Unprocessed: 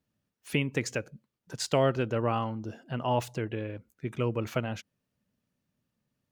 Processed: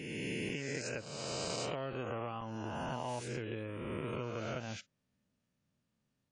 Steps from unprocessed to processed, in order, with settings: spectral swells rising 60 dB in 1.77 s; 3.08–3.61 high shelf 8400 Hz -> 5700 Hz +8.5 dB; compressor 10:1, threshold -30 dBFS, peak gain reduction 12 dB; crackling interface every 0.48 s, samples 128, zero, from 0.49; gain -5 dB; WMA 32 kbps 22050 Hz

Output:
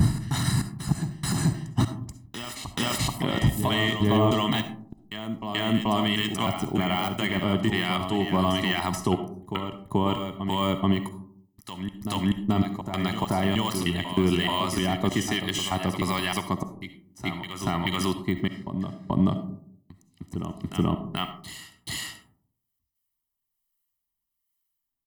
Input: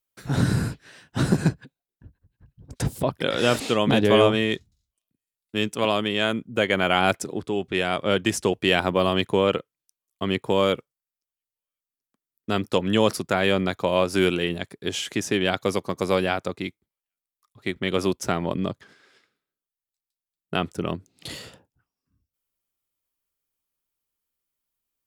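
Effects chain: slices in reverse order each 0.308 s, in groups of 3; de-esser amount 75%; gate -45 dBFS, range -8 dB; high shelf 9200 Hz +8.5 dB; comb 1 ms, depth 86%; limiter -13.5 dBFS, peak gain reduction 8.5 dB; harmonic tremolo 1.2 Hz, depth 70%, crossover 1000 Hz; reverse echo 0.432 s -8.5 dB; on a send at -9 dB: reverb RT60 0.60 s, pre-delay 25 ms; on the sum: gain +3.5 dB

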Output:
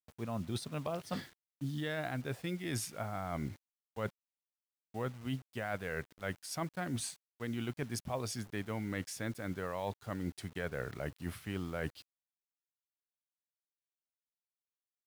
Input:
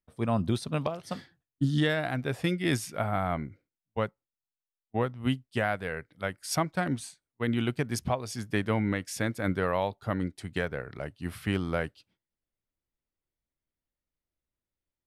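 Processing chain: reverse; compressor 16:1, threshold -37 dBFS, peak gain reduction 16.5 dB; reverse; requantised 10-bit, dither none; gain +3 dB

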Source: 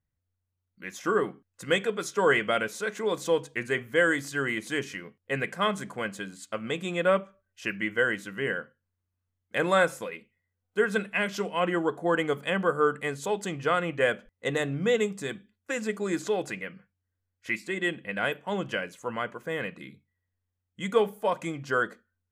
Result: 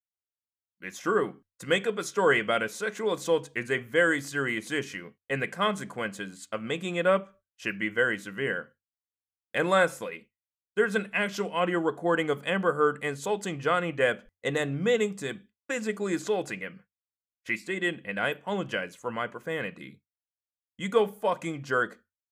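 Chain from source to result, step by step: expander -46 dBFS

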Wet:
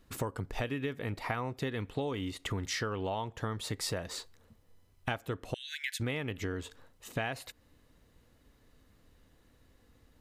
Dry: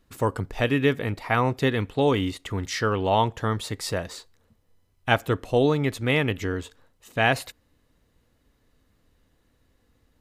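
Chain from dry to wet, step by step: 5.54–6 Chebyshev high-pass 1500 Hz, order 10; compressor 12:1, threshold -33 dBFS, peak gain reduction 18.5 dB; gain +1.5 dB

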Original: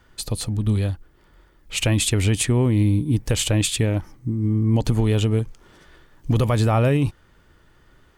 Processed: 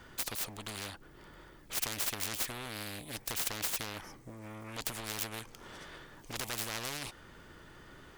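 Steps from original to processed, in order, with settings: self-modulated delay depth 0.36 ms; spectral compressor 4:1; gain -3.5 dB

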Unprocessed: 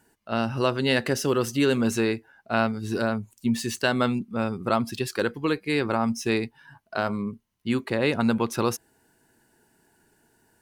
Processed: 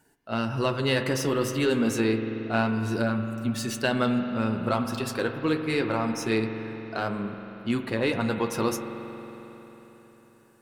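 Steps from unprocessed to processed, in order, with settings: in parallel at -8.5 dB: soft clip -23 dBFS, distortion -10 dB; on the sum: flange 0.28 Hz, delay 6.5 ms, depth 6.6 ms, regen -47%; reverb RT60 3.9 s, pre-delay 45 ms, DRR 6.5 dB

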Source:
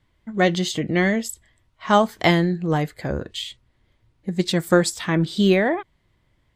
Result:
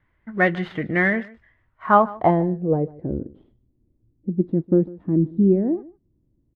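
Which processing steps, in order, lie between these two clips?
switching dead time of 0.077 ms; low-pass sweep 1800 Hz -> 300 Hz, 1.62–3.18; echo 0.149 s -21 dB; gain -2.5 dB

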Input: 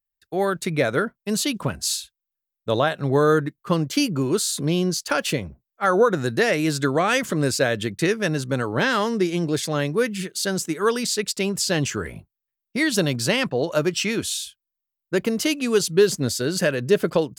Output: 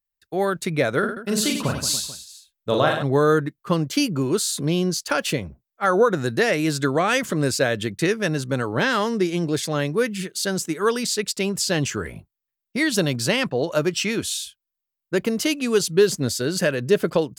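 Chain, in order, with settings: 0.99–3.03 reverse bouncing-ball echo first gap 40 ms, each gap 1.4×, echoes 5

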